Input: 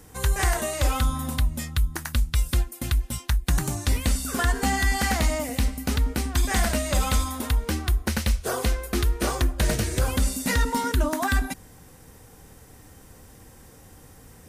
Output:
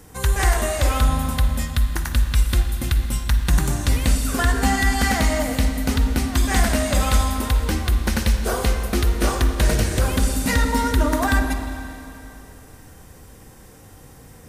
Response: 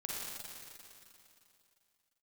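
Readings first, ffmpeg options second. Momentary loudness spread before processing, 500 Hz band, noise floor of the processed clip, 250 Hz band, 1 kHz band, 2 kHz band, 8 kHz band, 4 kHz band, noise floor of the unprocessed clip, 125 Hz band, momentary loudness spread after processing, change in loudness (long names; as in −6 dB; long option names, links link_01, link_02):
4 LU, +4.5 dB, −45 dBFS, +5.5 dB, +4.5 dB, +4.0 dB, +2.5 dB, +3.5 dB, −50 dBFS, +4.5 dB, 4 LU, +4.5 dB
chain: -filter_complex "[0:a]asplit=2[link_01][link_02];[1:a]atrim=start_sample=2205,highshelf=frequency=5000:gain=-6.5[link_03];[link_02][link_03]afir=irnorm=-1:irlink=0,volume=-2.5dB[link_04];[link_01][link_04]amix=inputs=2:normalize=0"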